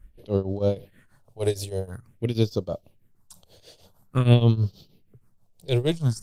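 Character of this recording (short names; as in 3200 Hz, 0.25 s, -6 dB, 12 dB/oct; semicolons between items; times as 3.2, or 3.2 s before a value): phasing stages 4, 0.48 Hz, lowest notch 220–2000 Hz; tremolo triangle 6.3 Hz, depth 90%; Opus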